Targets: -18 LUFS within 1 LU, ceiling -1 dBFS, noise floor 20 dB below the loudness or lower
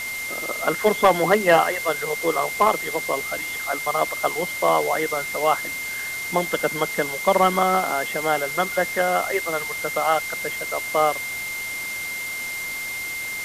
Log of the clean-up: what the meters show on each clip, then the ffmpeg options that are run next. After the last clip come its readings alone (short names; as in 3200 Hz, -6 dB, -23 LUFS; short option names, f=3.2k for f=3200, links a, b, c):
steady tone 2100 Hz; tone level -28 dBFS; noise floor -30 dBFS; noise floor target -43 dBFS; loudness -22.5 LUFS; peak -6.0 dBFS; loudness target -18.0 LUFS
-> -af "bandreject=f=2.1k:w=30"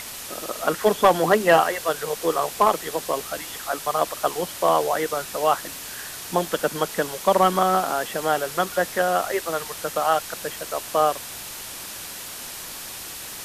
steady tone none; noise floor -36 dBFS; noise floor target -44 dBFS
-> -af "afftdn=nr=8:nf=-36"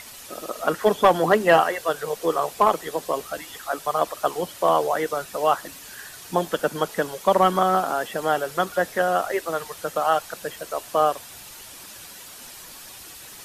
noise floor -42 dBFS; noise floor target -43 dBFS
-> -af "afftdn=nr=6:nf=-42"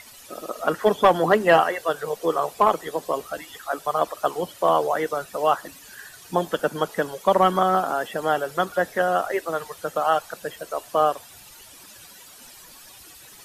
noise floor -47 dBFS; loudness -23.0 LUFS; peak -7.0 dBFS; loudness target -18.0 LUFS
-> -af "volume=5dB"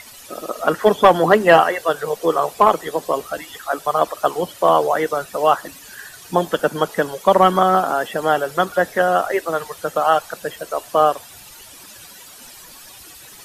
loudness -18.0 LUFS; peak -2.0 dBFS; noise floor -42 dBFS